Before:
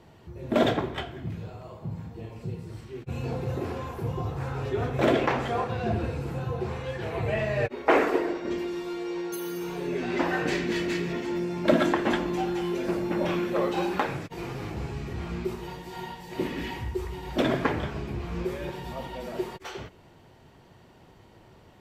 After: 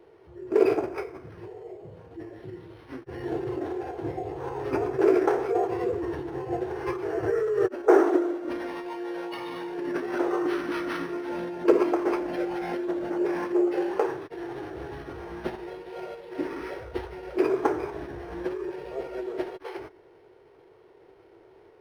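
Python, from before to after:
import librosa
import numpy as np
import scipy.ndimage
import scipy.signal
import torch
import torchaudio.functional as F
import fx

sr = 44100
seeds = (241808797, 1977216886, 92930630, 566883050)

y = fx.low_shelf_res(x, sr, hz=320.0, db=-12.5, q=3.0)
y = fx.formant_shift(y, sr, semitones=-6)
y = np.interp(np.arange(len(y)), np.arange(len(y))[::6], y[::6])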